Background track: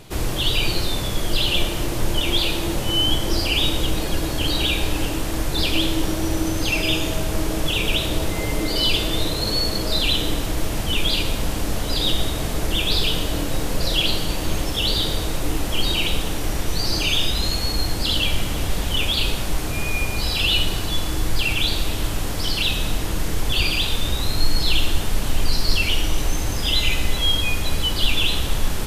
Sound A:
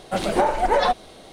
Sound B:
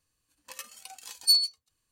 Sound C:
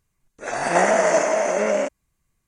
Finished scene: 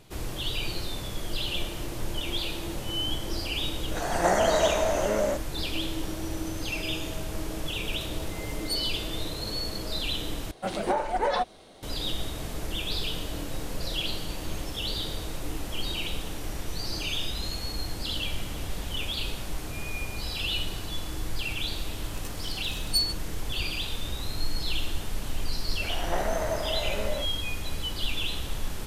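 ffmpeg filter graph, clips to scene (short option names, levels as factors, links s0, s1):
-filter_complex "[3:a]asplit=2[s0][s1];[2:a]asplit=2[s2][s3];[0:a]volume=0.299[s4];[s0]equalizer=f=2500:t=o:w=0.79:g=-8[s5];[s3]acompressor=mode=upward:threshold=0.0112:ratio=2.5:attack=3.2:release=140:knee=2.83:detection=peak[s6];[s1]lowpass=1800[s7];[s4]asplit=2[s8][s9];[s8]atrim=end=10.514[s10];[1:a]atrim=end=1.32,asetpts=PTS-STARTPTS,volume=0.447[s11];[s9]atrim=start=11.826[s12];[s5]atrim=end=2.47,asetpts=PTS-STARTPTS,volume=0.562,afade=t=in:d=0.004:c=hsin,afade=t=out:st=2.466:d=0.004:c=hsin,adelay=153909S[s13];[s2]atrim=end=1.91,asetpts=PTS-STARTPTS,volume=0.282,afade=t=in:d=0.004:c=hsin,afade=t=out:st=1.906:d=0.004:c=hsin,adelay=7420[s14];[s6]atrim=end=1.91,asetpts=PTS-STARTPTS,volume=0.596,afade=t=in:d=0.004:c=hsin,afade=t=out:st=1.906:d=0.004:c=hsin,adelay=21660[s15];[s7]atrim=end=2.47,asetpts=PTS-STARTPTS,volume=0.251,afade=t=in:d=0.004:c=hsin,afade=t=out:st=2.466:d=0.004:c=hsin,adelay=25370[s16];[s10][s11]acrossfade=d=0.004:c1=hsin:c2=hsin[s17];[s17][s12]acrossfade=d=0.004:c1=hsin:c2=hsin[s18];[s18][s13][s14][s15][s16]amix=inputs=5:normalize=0"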